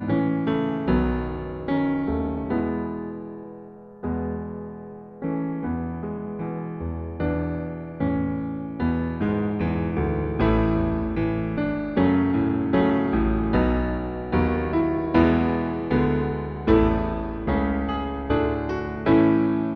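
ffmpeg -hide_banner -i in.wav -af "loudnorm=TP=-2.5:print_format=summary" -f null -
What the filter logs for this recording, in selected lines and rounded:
Input Integrated:    -24.1 LUFS
Input True Peak:      -6.8 dBTP
Input LRA:             7.2 LU
Input Threshold:     -34.3 LUFS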